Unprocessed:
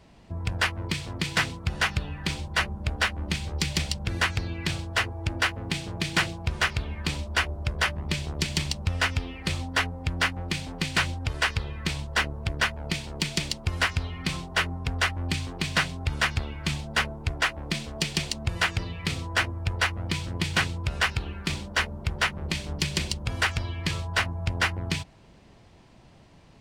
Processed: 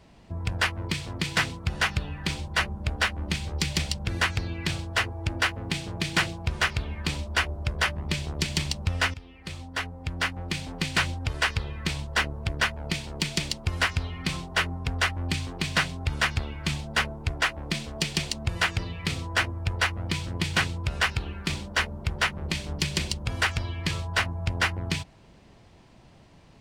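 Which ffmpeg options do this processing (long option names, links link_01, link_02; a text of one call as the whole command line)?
ffmpeg -i in.wav -filter_complex "[0:a]asplit=2[link_01][link_02];[link_01]atrim=end=9.14,asetpts=PTS-STARTPTS,afade=type=out:start_time=9.136:duration=0.004:curve=hsin:silence=0.16788[link_03];[link_02]atrim=start=9.14,asetpts=PTS-STARTPTS,afade=type=in:duration=1.6:silence=0.16788[link_04];[link_03][link_04]concat=n=2:v=0:a=1" out.wav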